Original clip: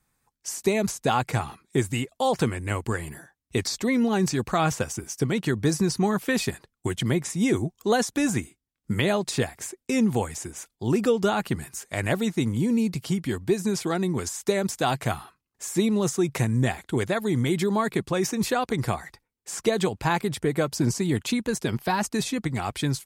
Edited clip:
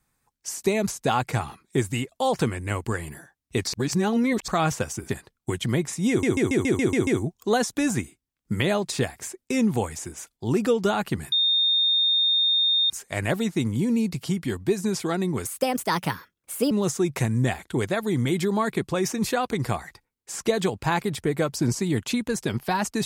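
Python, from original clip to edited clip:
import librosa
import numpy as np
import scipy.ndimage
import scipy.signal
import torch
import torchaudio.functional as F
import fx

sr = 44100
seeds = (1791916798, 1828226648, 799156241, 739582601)

y = fx.edit(x, sr, fx.reverse_span(start_s=3.73, length_s=0.75),
    fx.cut(start_s=5.09, length_s=1.37),
    fx.stutter(start_s=7.46, slice_s=0.14, count=8),
    fx.insert_tone(at_s=11.71, length_s=1.58, hz=3660.0, db=-18.0),
    fx.speed_span(start_s=14.26, length_s=1.64, speed=1.3), tone=tone)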